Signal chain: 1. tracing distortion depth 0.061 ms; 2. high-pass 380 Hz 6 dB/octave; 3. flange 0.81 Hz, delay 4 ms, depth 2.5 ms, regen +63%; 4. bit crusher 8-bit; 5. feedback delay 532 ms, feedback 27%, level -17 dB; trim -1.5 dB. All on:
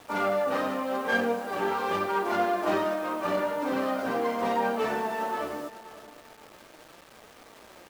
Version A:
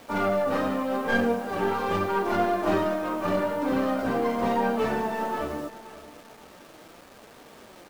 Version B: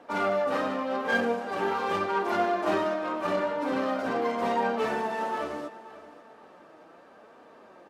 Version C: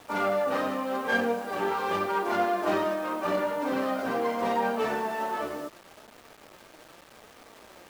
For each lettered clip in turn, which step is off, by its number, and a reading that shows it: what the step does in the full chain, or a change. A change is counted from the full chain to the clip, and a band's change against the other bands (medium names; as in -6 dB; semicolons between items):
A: 2, 125 Hz band +8.0 dB; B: 4, distortion -25 dB; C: 5, momentary loudness spread change -2 LU